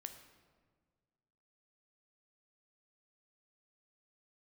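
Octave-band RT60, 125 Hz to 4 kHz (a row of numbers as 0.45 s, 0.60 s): 2.1 s, 1.9 s, 1.8 s, 1.5 s, 1.2 s, 0.95 s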